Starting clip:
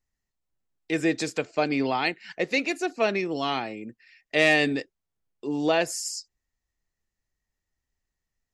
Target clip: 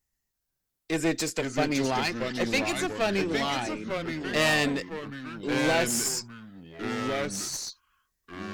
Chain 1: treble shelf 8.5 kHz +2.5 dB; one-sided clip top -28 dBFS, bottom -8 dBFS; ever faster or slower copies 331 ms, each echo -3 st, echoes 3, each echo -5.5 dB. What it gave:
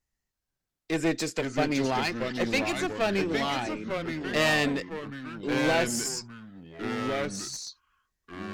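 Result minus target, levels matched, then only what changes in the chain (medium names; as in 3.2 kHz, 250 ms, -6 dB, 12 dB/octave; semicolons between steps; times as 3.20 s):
8 kHz band -3.0 dB
change: treble shelf 8.5 kHz +14 dB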